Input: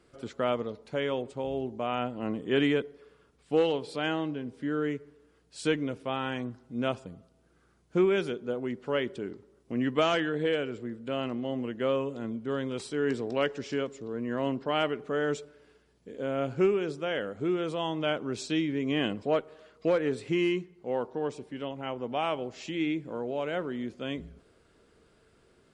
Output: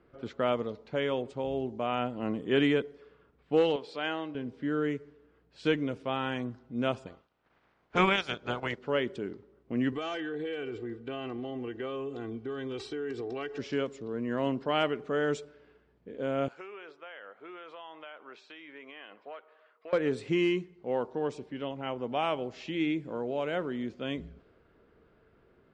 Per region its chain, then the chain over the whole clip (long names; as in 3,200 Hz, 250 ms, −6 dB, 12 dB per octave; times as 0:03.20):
0:03.76–0:04.35: high-pass filter 550 Hz 6 dB per octave + high-frequency loss of the air 76 metres
0:07.06–0:08.77: ceiling on every frequency bin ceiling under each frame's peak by 24 dB + low-pass filter 7,000 Hz + transient designer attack −1 dB, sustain −10 dB
0:09.92–0:13.59: comb filter 2.6 ms, depth 81% + downward compressor 5 to 1, threshold −33 dBFS
0:16.48–0:19.93: high-pass filter 1,000 Hz + downward compressor 5 to 1, threshold −39 dBFS + high-shelf EQ 2,500 Hz −7 dB
whole clip: low-pass that shuts in the quiet parts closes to 2,000 Hz, open at −27.5 dBFS; low-pass filter 7,800 Hz 12 dB per octave